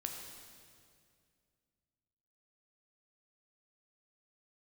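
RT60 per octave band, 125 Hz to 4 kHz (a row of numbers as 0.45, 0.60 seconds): 2.9, 2.7, 2.4, 2.0, 2.0, 1.9 seconds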